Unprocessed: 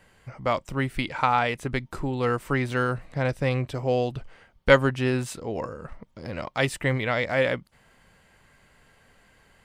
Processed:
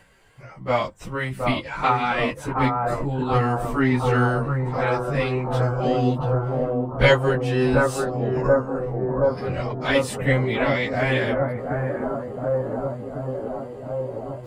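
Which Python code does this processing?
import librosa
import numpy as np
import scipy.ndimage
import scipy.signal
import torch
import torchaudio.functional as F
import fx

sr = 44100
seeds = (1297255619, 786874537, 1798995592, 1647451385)

y = fx.echo_bbd(x, sr, ms=481, stages=4096, feedback_pct=78, wet_db=-3.0)
y = fx.stretch_vocoder_free(y, sr, factor=1.5)
y = y * 10.0 ** (4.5 / 20.0)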